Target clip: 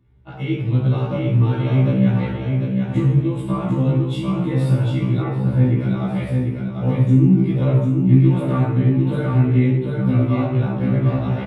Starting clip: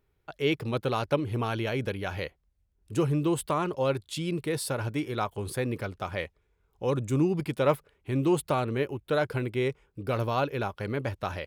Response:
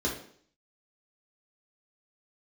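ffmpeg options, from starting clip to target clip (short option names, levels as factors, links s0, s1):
-filter_complex "[0:a]asettb=1/sr,asplit=3[s0][s1][s2];[s0]atrim=end=8.164[s3];[s1]atrim=start=8.16:end=8.66,asetpts=PTS-STARTPTS,afade=t=in:d=0.004:c=qsin,afade=t=out:st=0.496:d=0.004:c=qsin,equalizer=f=1700:t=o:w=0.7:g=12.5[s4];[s2]atrim=start=8.656[s5];[s3][s4]acrossfade=d=0.004:c1=hsin:c2=qsin[s6];[s6][s5]acrossfade=d=0.004:c1=qsin:c2=hsin,acompressor=threshold=0.0141:ratio=2.5,bass=f=250:g=8,treble=f=4000:g=-8,aecho=1:1:746|1492|2238|2984:0.631|0.189|0.0568|0.017[s7];[1:a]atrim=start_sample=2205,asetrate=24255,aresample=44100[s8];[s7][s8]afir=irnorm=-1:irlink=0,asettb=1/sr,asplit=3[s9][s10][s11];[s9]atrim=end=5.224[s12];[s10]atrim=start=5.22:end=5.81,asetpts=PTS-STARTPTS,afade=t=in:d=0.004:c=qsin,afade=t=out:st=0.586:d=0.004:c=qsin,acrossover=split=3000[s13][s14];[s14]acompressor=threshold=0.00112:ratio=4:attack=1:release=60[s15];[s13][s15]amix=inputs=2:normalize=0[s16];[s11]atrim=start=5.806[s17];[s12][s16]acrossfade=d=0.004:c1=hsin:c2=qsin[s18];[s18][s17]acrossfade=d=0.004:c1=qsin:c2=hsin,afftfilt=real='re*1.73*eq(mod(b,3),0)':imag='im*1.73*eq(mod(b,3),0)':win_size=2048:overlap=0.75,volume=0.891"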